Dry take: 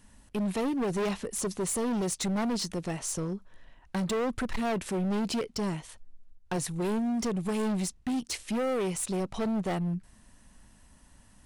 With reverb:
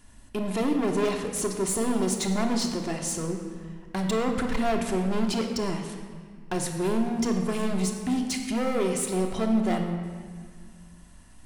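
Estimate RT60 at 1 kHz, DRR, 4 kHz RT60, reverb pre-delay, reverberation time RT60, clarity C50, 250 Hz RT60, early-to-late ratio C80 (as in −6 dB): 1.8 s, 2.5 dB, 1.4 s, 3 ms, 1.8 s, 5.5 dB, 2.2 s, 6.5 dB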